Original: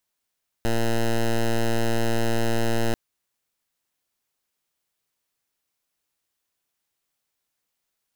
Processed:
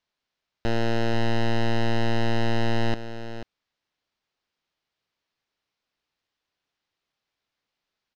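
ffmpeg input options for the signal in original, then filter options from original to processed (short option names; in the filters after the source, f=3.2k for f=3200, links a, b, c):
-f lavfi -i "aevalsrc='0.0891*(2*lt(mod(115*t,1),0.1)-1)':d=2.29:s=44100"
-af "lowpass=f=5k:w=0.5412,lowpass=f=5k:w=1.3066,aeval=exprs='0.112*(cos(1*acos(clip(val(0)/0.112,-1,1)))-cos(1*PI/2))+0.00282*(cos(5*acos(clip(val(0)/0.112,-1,1)))-cos(5*PI/2))':c=same,aecho=1:1:488:0.266"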